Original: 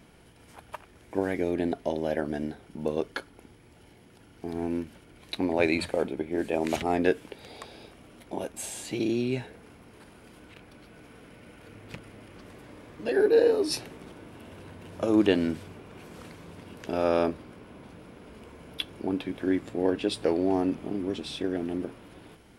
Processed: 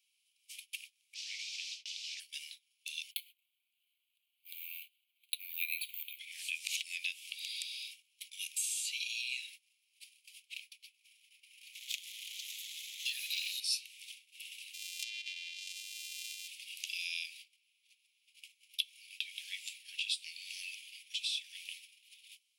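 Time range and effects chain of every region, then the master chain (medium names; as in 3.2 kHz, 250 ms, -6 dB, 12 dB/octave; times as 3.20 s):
1.14–2.20 s: modulation noise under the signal 13 dB + compression 3:1, threshold -31 dBFS + Chebyshev low-pass 5.4 kHz, order 3
3.11–6.19 s: careless resampling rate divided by 3×, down filtered, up hold + peaking EQ 1.5 kHz -9 dB 1.1 oct + static phaser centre 2.4 kHz, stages 4
11.73–13.60 s: rippled EQ curve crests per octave 1.1, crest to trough 9 dB + waveshaping leveller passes 2 + static phaser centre 310 Hz, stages 6
14.73–16.48 s: sorted samples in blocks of 128 samples + low-pass that closes with the level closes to 2.8 kHz, closed at -21.5 dBFS + compression 4:1, threshold -35 dBFS
whole clip: steep high-pass 2.4 kHz 72 dB/octave; gate -60 dBFS, range -23 dB; compression 3:1, threshold -48 dBFS; trim +11.5 dB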